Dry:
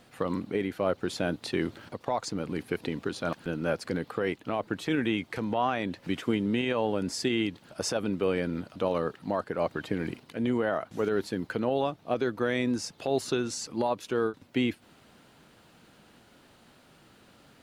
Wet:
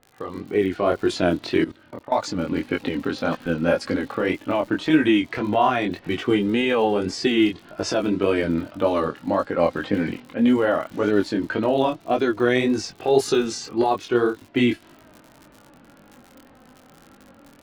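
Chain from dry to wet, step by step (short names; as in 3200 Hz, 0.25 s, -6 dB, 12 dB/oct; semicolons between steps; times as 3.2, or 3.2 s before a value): flange 0.15 Hz, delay 2.4 ms, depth 1.5 ms, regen +41%; low-pass opened by the level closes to 1500 Hz, open at -27 dBFS; AGC gain up to 11 dB; crackle 49/s -34 dBFS; chorus 1.8 Hz, delay 19 ms, depth 5.8 ms; 1.64–2.12 level quantiser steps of 19 dB; gain +4 dB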